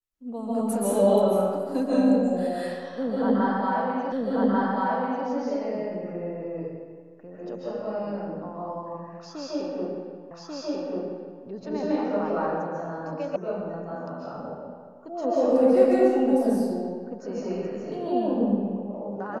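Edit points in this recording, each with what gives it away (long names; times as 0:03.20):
0:04.12: the same again, the last 1.14 s
0:10.31: the same again, the last 1.14 s
0:13.36: cut off before it has died away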